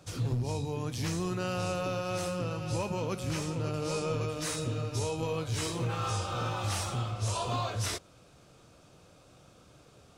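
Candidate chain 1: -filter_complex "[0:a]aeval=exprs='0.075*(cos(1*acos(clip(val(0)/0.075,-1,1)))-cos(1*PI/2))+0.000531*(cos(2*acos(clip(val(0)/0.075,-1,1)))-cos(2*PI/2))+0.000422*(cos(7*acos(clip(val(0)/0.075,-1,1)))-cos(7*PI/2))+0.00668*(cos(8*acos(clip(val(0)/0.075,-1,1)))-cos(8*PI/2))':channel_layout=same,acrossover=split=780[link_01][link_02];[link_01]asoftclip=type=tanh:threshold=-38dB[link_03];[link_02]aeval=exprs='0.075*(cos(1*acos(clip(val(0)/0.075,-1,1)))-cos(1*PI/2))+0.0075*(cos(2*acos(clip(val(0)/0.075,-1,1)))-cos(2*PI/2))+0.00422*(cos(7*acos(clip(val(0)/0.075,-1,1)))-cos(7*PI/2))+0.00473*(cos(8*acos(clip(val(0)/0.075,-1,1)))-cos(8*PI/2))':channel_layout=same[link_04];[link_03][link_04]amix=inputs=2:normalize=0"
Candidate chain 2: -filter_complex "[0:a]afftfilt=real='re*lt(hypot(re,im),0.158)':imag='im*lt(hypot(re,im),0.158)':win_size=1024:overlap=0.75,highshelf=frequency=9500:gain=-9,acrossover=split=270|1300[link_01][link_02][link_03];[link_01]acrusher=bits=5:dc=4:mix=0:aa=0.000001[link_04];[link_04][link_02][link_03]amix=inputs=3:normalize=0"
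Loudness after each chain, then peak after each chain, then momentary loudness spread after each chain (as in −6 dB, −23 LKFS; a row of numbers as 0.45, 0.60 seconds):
−37.0, −37.0 LKFS; −20.5, −22.5 dBFS; 5, 3 LU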